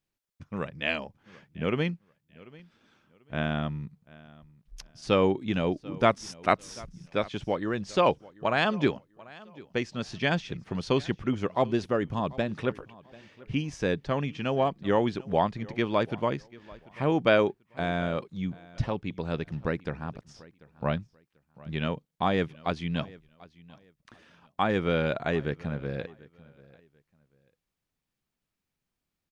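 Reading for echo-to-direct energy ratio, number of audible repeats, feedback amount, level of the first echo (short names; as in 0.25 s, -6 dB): -21.5 dB, 2, 25%, -22.0 dB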